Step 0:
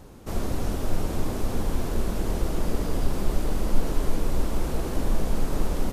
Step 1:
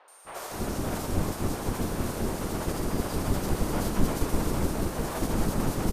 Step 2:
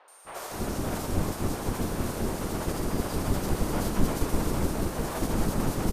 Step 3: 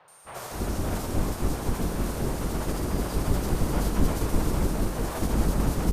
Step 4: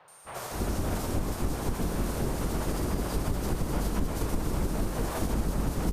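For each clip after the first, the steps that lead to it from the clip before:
ceiling on every frequency bin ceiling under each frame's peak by 18 dB; steady tone 8,900 Hz −46 dBFS; three-band delay without the direct sound mids, highs, lows 80/250 ms, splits 530/3,200 Hz; level −6.5 dB
no processing that can be heard
sub-octave generator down 2 octaves, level +2 dB
downward compressor, threshold −24 dBFS, peak gain reduction 8.5 dB

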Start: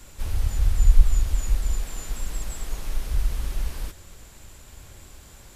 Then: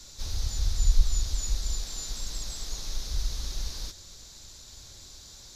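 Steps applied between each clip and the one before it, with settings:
flat-topped bell 4,900 Hz +16 dB 1.1 octaves
level −6.5 dB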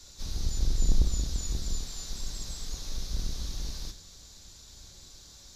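sub-octave generator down 1 octave, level 0 dB
convolution reverb, pre-delay 3 ms, DRR 7.5 dB
level −4 dB

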